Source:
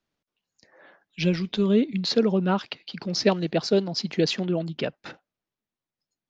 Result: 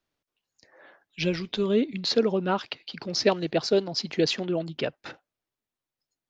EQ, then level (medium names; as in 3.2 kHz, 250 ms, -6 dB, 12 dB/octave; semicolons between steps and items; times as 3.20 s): peaking EQ 190 Hz -7 dB 0.58 oct; 0.0 dB